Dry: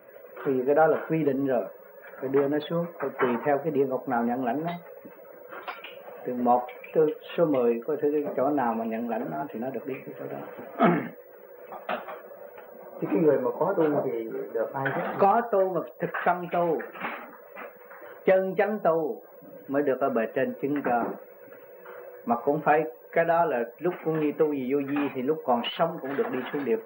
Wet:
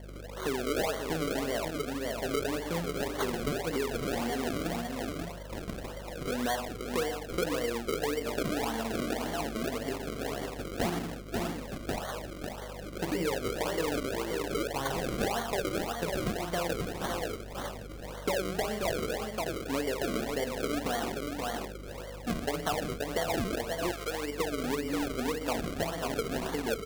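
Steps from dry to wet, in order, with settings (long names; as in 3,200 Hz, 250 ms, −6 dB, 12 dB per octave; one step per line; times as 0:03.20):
multi-tap delay 48/100/116/170/530/607 ms −7.5/−19.5/−12.5/−19.5/−9/−14 dB
sample-and-hold swept by an LFO 34×, swing 100% 1.8 Hz
downward compressor 4 to 1, threshold −30 dBFS, peak gain reduction 13 dB
0:23.91–0:24.38: high-pass filter 670 Hz → 300 Hz 12 dB per octave
mains hum 50 Hz, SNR 12 dB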